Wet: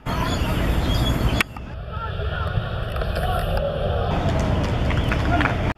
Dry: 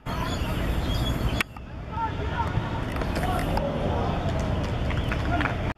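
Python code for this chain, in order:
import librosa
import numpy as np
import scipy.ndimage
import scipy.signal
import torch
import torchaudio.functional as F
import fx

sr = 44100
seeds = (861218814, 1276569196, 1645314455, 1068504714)

y = fx.fixed_phaser(x, sr, hz=1400.0, stages=8, at=(1.74, 4.11))
y = y * librosa.db_to_amplitude(5.5)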